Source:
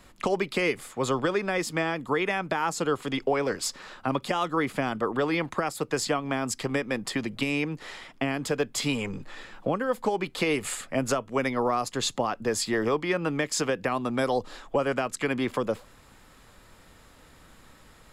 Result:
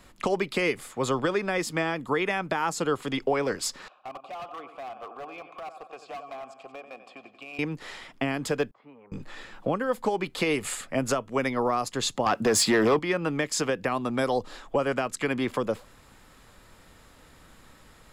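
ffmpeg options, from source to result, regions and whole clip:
ffmpeg -i in.wav -filter_complex "[0:a]asettb=1/sr,asplit=3[link_01][link_02][link_03];[link_01]atrim=end=3.884[link_04];[link_02]atrim=start=3.88:end=7.59,asetpts=PTS-STARTPTS,afade=type=in:duration=0.004:curve=qsin,afade=type=out:start_time=3.706:duration=0.004:curve=qsin,asplit=3[link_05][link_06][link_07];[link_05]bandpass=frequency=730:width_type=q:width=8,volume=0dB[link_08];[link_06]bandpass=frequency=1090:width_type=q:width=8,volume=-6dB[link_09];[link_07]bandpass=frequency=2440:width_type=q:width=8,volume=-9dB[link_10];[link_08][link_09][link_10]amix=inputs=3:normalize=0,aecho=1:1:91|182|273|364|455|546|637:0.266|0.154|0.0895|0.0519|0.0301|0.0175|0.0101,atrim=end_sample=163611,volume=34.5dB,asoftclip=hard,volume=-34.5dB[link_11];[link_03]atrim=start=7.586[link_12];[link_04][link_11]acrossfade=duration=0.004:curve1=hsin:curve2=qsin[link_13];[link_13][link_12]acrossfade=duration=0.004:curve1=qsin:curve2=hsin,asettb=1/sr,asplit=3[link_14][link_15][link_16];[link_14]atrim=end=8.714[link_17];[link_15]atrim=start=8.71:end=9.12,asetpts=PTS-STARTPTS,afade=type=in:duration=0.004:curve=qsin,afade=type=out:start_time=0.406:duration=0.004:curve=qsin,lowpass=frequency=1100:width=0.5412,lowpass=frequency=1100:width=1.3066,aderivative,acontrast=36[link_18];[link_16]atrim=start=9.116[link_19];[link_17][link_18]acrossfade=duration=0.004:curve1=hsin:curve2=qsin[link_20];[link_20][link_19]acrossfade=duration=0.004:curve1=qsin:curve2=hsin,asettb=1/sr,asplit=3[link_21][link_22][link_23];[link_21]atrim=end=12.264[link_24];[link_22]atrim=start=12.26:end=12.99,asetpts=PTS-STARTPTS,afade=type=in:duration=0.004:curve=qsin,afade=type=out:start_time=0.726:duration=0.004:curve=qsin,highpass=96,acompressor=threshold=-26dB:ratio=2.5:attack=3.2:release=140:knee=1:detection=peak,aeval=exprs='0.158*sin(PI/2*2*val(0)/0.158)':channel_layout=same[link_25];[link_23]atrim=start=12.986[link_26];[link_24][link_25]acrossfade=duration=0.004:curve1=hsin:curve2=qsin[link_27];[link_27][link_26]acrossfade=duration=0.004:curve1=qsin:curve2=hsin" out.wav

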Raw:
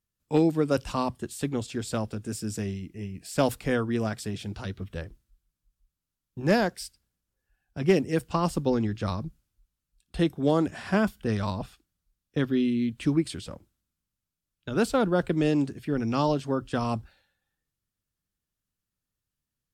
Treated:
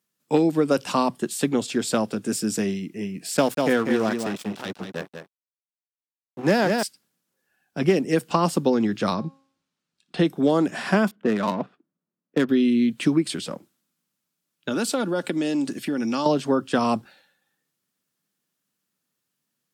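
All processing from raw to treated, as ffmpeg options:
ffmpeg -i in.wav -filter_complex "[0:a]asettb=1/sr,asplit=3[link_01][link_02][link_03];[link_01]atrim=end=3.374[link_04];[link_02]atrim=start=3.37:end=6.83,asetpts=PTS-STARTPTS,afade=type=in:duration=0.004:curve=qsin,afade=type=out:start_time=3.456:duration=0.004:curve=qsin,highpass=44,aeval=exprs='sgn(val(0))*max(abs(val(0))-0.0112,0)':channel_layout=same,aecho=1:1:193:0.422,atrim=end_sample=152586[link_05];[link_03]atrim=start=6.826[link_06];[link_04][link_05]acrossfade=duration=0.004:curve1=hsin:curve2=qsin[link_07];[link_07][link_06]acrossfade=duration=0.004:curve1=qsin:curve2=hsin,asettb=1/sr,asplit=3[link_08][link_09][link_10];[link_08]atrim=end=9.144[link_11];[link_09]atrim=start=9.14:end=10.24,asetpts=PTS-STARTPTS,afade=type=in:duration=0.004:curve=qsin,afade=type=out:start_time=1.096:duration=0.004:curve=qsin,lowpass=5400,bandreject=frequency=270.8:width_type=h:width=4,bandreject=frequency=541.6:width_type=h:width=4,bandreject=frequency=812.4:width_type=h:width=4,bandreject=frequency=1083.2:width_type=h:width=4,bandreject=frequency=1354:width_type=h:width=4,bandreject=frequency=1624.8:width_type=h:width=4,bandreject=frequency=1895.6:width_type=h:width=4,bandreject=frequency=2166.4:width_type=h:width=4,bandreject=frequency=2437.2:width_type=h:width=4,bandreject=frequency=2708:width_type=h:width=4,bandreject=frequency=2978.8:width_type=h:width=4,bandreject=frequency=3249.6:width_type=h:width=4,bandreject=frequency=3520.4:width_type=h:width=4,bandreject=frequency=3791.2:width_type=h:width=4,bandreject=frequency=4062:width_type=h:width=4,bandreject=frequency=4332.8:width_type=h:width=4,bandreject=frequency=4603.6:width_type=h:width=4,bandreject=frequency=4874.4:width_type=h:width=4,bandreject=frequency=5145.2:width_type=h:width=4,bandreject=frequency=5416:width_type=h:width=4,bandreject=frequency=5686.8:width_type=h:width=4,bandreject=frequency=5957.6:width_type=h:width=4,bandreject=frequency=6228.4:width_type=h:width=4,bandreject=frequency=6499.2:width_type=h:width=4,bandreject=frequency=6770:width_type=h:width=4,bandreject=frequency=7040.8:width_type=h:width=4,bandreject=frequency=7311.6:width_type=h:width=4,bandreject=frequency=7582.4:width_type=h:width=4,bandreject=frequency=7853.2:width_type=h:width=4,bandreject=frequency=8124:width_type=h:width=4,bandreject=frequency=8394.8:width_type=h:width=4,bandreject=frequency=8665.6:width_type=h:width=4,bandreject=frequency=8936.4:width_type=h:width=4,bandreject=frequency=9207.2:width_type=h:width=4,bandreject=frequency=9478:width_type=h:width=4,bandreject=frequency=9748.8:width_type=h:width=4,bandreject=frequency=10019.6:width_type=h:width=4,bandreject=frequency=10290.4:width_type=h:width=4,bandreject=frequency=10561.2:width_type=h:width=4[link_12];[link_10]atrim=start=10.236[link_13];[link_11][link_12]acrossfade=duration=0.004:curve1=hsin:curve2=qsin[link_14];[link_14][link_13]acrossfade=duration=0.004:curve1=qsin:curve2=hsin,asettb=1/sr,asplit=3[link_15][link_16][link_17];[link_15]atrim=end=11.114[link_18];[link_16]atrim=start=11.11:end=12.49,asetpts=PTS-STARTPTS,afade=type=in:duration=0.004:curve=qsin,afade=type=out:start_time=1.376:duration=0.004:curve=qsin,highpass=160,bandreject=frequency=810:width=10,adynamicsmooth=sensitivity=6:basefreq=880[link_19];[link_17]atrim=start=12.486[link_20];[link_18][link_19]acrossfade=duration=0.004:curve1=hsin:curve2=qsin[link_21];[link_21][link_20]acrossfade=duration=0.004:curve1=qsin:curve2=hsin,asettb=1/sr,asplit=3[link_22][link_23][link_24];[link_22]atrim=end=14.714[link_25];[link_23]atrim=start=14.71:end=16.26,asetpts=PTS-STARTPTS,afade=type=in:duration=0.004:curve=qsin,afade=type=out:start_time=1.546:duration=0.004:curve=qsin,equalizer=frequency=8100:width=0.39:gain=7,aecho=1:1:3.5:0.35,atrim=end_sample=68355,acompressor=threshold=-31dB:ratio=4:attack=3.2:release=140:knee=1:detection=peak[link_26];[link_24]atrim=start=16.256[link_27];[link_25][link_26]acrossfade=duration=0.004:curve1=hsin:curve2=qsin[link_28];[link_28][link_27]acrossfade=duration=0.004:curve1=qsin:curve2=hsin,highpass=frequency=170:width=0.5412,highpass=frequency=170:width=1.3066,acompressor=threshold=-25dB:ratio=4,volume=9dB" out.wav

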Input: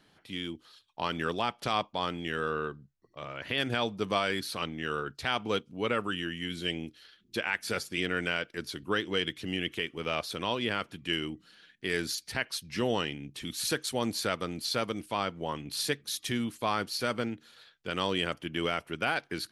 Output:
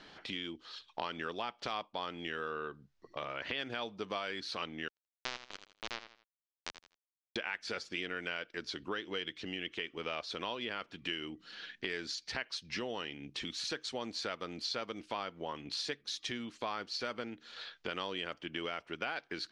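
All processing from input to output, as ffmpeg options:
ffmpeg -i in.wav -filter_complex "[0:a]asettb=1/sr,asplit=3[link_01][link_02][link_03];[link_01]atrim=end=4.884[link_04];[link_02]atrim=start=4.88:end=7.36,asetpts=PTS-STARTPTS,afade=type=in:duration=0.004:curve=qsin,afade=type=out:start_time=2.476:duration=0.004:curve=qsin,lowpass=3100,acrusher=bits=2:mix=0:aa=0.5,aecho=1:1:81|162|243:0.237|0.0522|0.0115,atrim=end_sample=109368[link_05];[link_03]atrim=start=7.356[link_06];[link_04][link_05]acrossfade=duration=0.004:curve1=hsin:curve2=qsin[link_07];[link_07][link_06]acrossfade=duration=0.004:curve1=qsin:curve2=hsin,acompressor=threshold=-48dB:ratio=4,lowpass=frequency=6000:width=0.5412,lowpass=frequency=6000:width=1.3066,equalizer=frequency=110:width=0.63:gain=-10,volume=10.5dB" out.wav

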